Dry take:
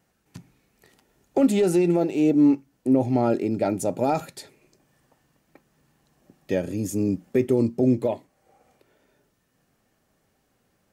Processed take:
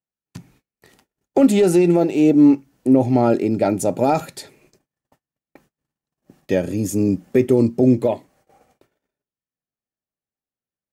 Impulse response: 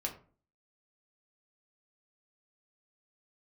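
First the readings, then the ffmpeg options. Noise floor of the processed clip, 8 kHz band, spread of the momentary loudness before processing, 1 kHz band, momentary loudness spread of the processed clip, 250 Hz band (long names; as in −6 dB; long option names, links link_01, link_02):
below −85 dBFS, +5.5 dB, 9 LU, +5.5 dB, 9 LU, +5.5 dB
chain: -af "agate=range=-34dB:threshold=-60dB:ratio=16:detection=peak,volume=5.5dB"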